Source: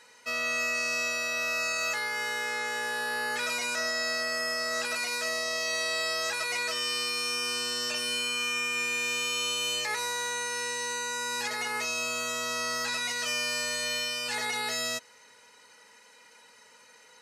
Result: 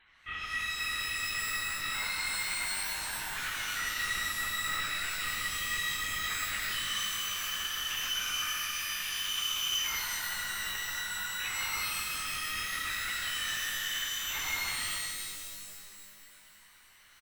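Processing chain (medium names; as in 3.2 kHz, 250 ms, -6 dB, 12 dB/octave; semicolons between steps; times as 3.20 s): high-pass 1.2 kHz 12 dB/octave; comb 5.6 ms, depth 64%; LPC vocoder at 8 kHz whisper; pitch-shifted reverb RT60 2.2 s, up +12 st, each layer -2 dB, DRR 0.5 dB; trim -6 dB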